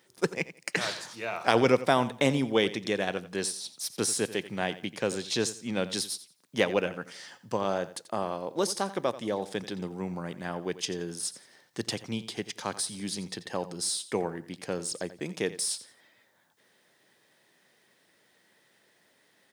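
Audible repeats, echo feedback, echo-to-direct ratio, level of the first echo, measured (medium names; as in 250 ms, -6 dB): 2, 25%, -15.0 dB, -15.5 dB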